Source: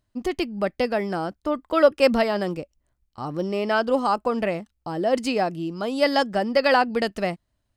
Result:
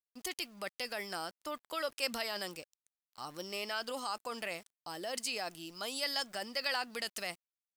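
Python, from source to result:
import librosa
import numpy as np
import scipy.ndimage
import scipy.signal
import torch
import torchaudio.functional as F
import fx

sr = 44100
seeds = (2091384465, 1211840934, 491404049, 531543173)

p1 = scipy.signal.lfilter([1.0, -0.97], [1.0], x)
p2 = fx.over_compress(p1, sr, threshold_db=-44.0, ratio=-1.0)
p3 = p1 + F.gain(torch.from_numpy(p2), -1.0).numpy()
p4 = np.where(np.abs(p3) >= 10.0 ** (-54.5 / 20.0), p3, 0.0)
y = F.gain(torch.from_numpy(p4), -2.0).numpy()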